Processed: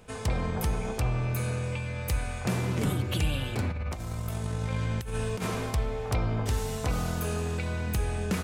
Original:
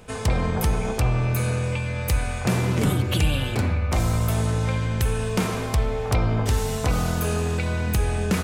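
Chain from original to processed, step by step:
0:03.70–0:05.71: compressor whose output falls as the input rises −24 dBFS, ratio −0.5
level −6.5 dB

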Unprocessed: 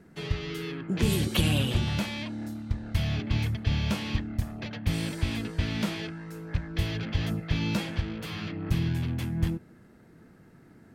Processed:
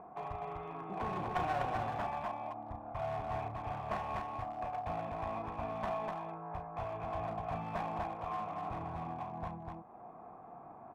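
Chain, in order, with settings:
variable-slope delta modulation 64 kbit/s
in parallel at −3 dB: upward compression, threshold −27 dBFS
on the sum: formant resonators in series a
asymmetric clip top −45 dBFS
low-shelf EQ 460 Hz −7 dB
loudspeakers that aren't time-aligned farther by 12 metres −7 dB, 85 metres −3 dB
level +11 dB

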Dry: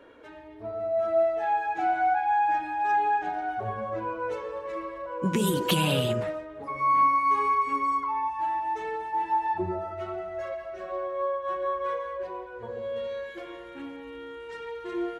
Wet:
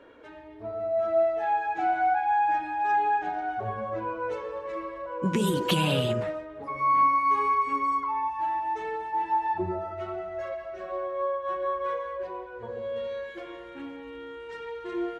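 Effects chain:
high-shelf EQ 11,000 Hz −12 dB

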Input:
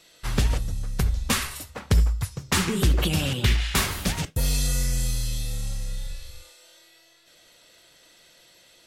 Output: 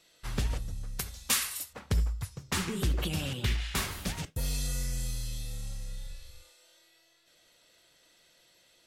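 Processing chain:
0:00.99–0:01.73: spectral tilt +3 dB per octave
level −8.5 dB

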